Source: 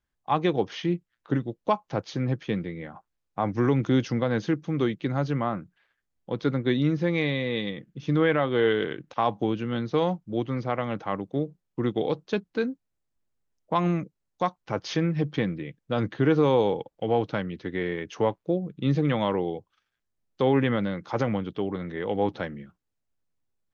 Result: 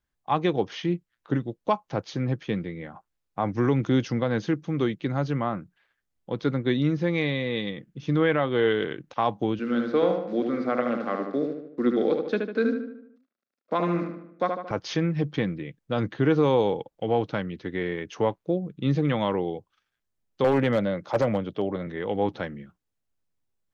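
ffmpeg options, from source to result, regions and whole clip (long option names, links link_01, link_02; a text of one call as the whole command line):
ffmpeg -i in.wav -filter_complex "[0:a]asettb=1/sr,asplit=3[link_01][link_02][link_03];[link_01]atrim=end=9.594[link_04];[link_02]atrim=start=9.59:end=14.71,asetpts=PTS-STARTPTS,afade=type=in:duration=0.004:curve=qsin,afade=type=out:start_time=5.116:duration=0.004:curve=qsin,acrusher=bits=9:dc=4:mix=0:aa=0.000001,highpass=frequency=210:width=0.5412,highpass=frequency=210:width=1.3066,equalizer=frequency=240:width_type=q:width=4:gain=5,equalizer=frequency=520:width_type=q:width=4:gain=4,equalizer=frequency=910:width_type=q:width=4:gain=-8,equalizer=frequency=1400:width_type=q:width=4:gain=6,equalizer=frequency=3000:width_type=q:width=4:gain=-7,lowpass=frequency=4700:width=0.5412,lowpass=frequency=4700:width=1.3066,asplit=2[link_05][link_06];[link_06]adelay=75,lowpass=frequency=3200:poles=1,volume=-4.5dB,asplit=2[link_07][link_08];[link_08]adelay=75,lowpass=frequency=3200:poles=1,volume=0.52,asplit=2[link_09][link_10];[link_10]adelay=75,lowpass=frequency=3200:poles=1,volume=0.52,asplit=2[link_11][link_12];[link_12]adelay=75,lowpass=frequency=3200:poles=1,volume=0.52,asplit=2[link_13][link_14];[link_14]adelay=75,lowpass=frequency=3200:poles=1,volume=0.52,asplit=2[link_15][link_16];[link_16]adelay=75,lowpass=frequency=3200:poles=1,volume=0.52,asplit=2[link_17][link_18];[link_18]adelay=75,lowpass=frequency=3200:poles=1,volume=0.52[link_19];[link_05][link_07][link_09][link_11][link_13][link_15][link_17][link_19]amix=inputs=8:normalize=0,atrim=end_sample=225792[link_20];[link_03]atrim=start=14.706[link_21];[link_04][link_20]acrossfade=duration=0.004:curve1=hsin:curve2=qsin[link_22];[link_22][link_21]acrossfade=duration=0.004:curve1=qsin:curve2=hsin,asettb=1/sr,asplit=3[link_23][link_24][link_25];[link_23]atrim=end=20.444[link_26];[link_24]atrim=start=20.44:end=21.87,asetpts=PTS-STARTPTS,afade=type=in:duration=0.004:curve=qsin,afade=type=out:start_time=1.426:duration=0.004:curve=qsin,highpass=frequency=75:width=0.5412,highpass=frequency=75:width=1.3066,equalizer=frequency=590:width_type=o:width=0.44:gain=9.5,asoftclip=type=hard:threshold=-16dB[link_27];[link_25]atrim=start=21.866[link_28];[link_26][link_27]acrossfade=duration=0.004:curve1=hsin:curve2=qsin[link_29];[link_29][link_28]acrossfade=duration=0.004:curve1=qsin:curve2=hsin" out.wav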